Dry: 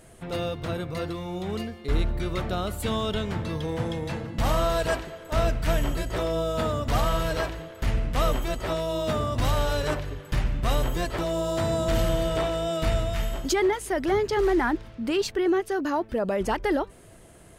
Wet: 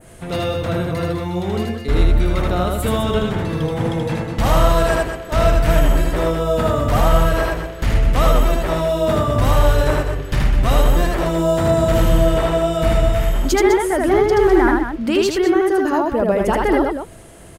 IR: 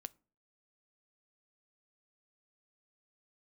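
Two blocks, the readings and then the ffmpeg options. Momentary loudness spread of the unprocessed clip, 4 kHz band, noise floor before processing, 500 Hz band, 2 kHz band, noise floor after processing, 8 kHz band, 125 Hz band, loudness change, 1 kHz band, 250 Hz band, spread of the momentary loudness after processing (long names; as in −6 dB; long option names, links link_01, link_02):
7 LU, +5.5 dB, −49 dBFS, +9.5 dB, +8.0 dB, −32 dBFS, +7.0 dB, +10.0 dB, +9.5 dB, +9.0 dB, +9.5 dB, 7 LU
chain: -af "aecho=1:1:78.72|204.1:0.794|0.398,adynamicequalizer=threshold=0.00501:dfrequency=4500:dqfactor=0.78:tfrequency=4500:tqfactor=0.78:attack=5:release=100:ratio=0.375:range=3.5:mode=cutabove:tftype=bell,volume=7dB"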